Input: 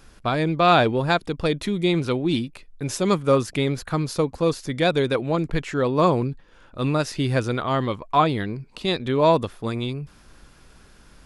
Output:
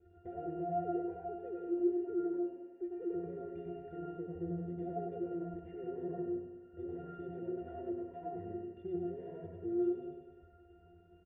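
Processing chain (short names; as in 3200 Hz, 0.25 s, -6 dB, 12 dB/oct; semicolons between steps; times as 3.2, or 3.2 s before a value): 0.71–3.14 sine-wave speech; notch 1700 Hz, Q 7.2; reverb removal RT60 0.82 s; notches 60/120/180/240/300 Hz; comb 2.9 ms, depth 69%; compressor, threshold -23 dBFS, peak gain reduction 14 dB; tube stage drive 33 dB, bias 0.7; vocal tract filter e; octave resonator F, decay 0.42 s; feedback echo 99 ms, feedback 56%, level -6.5 dB; reverb RT60 0.55 s, pre-delay 91 ms, DRR -2.5 dB; mismatched tape noise reduction encoder only; gain +14.5 dB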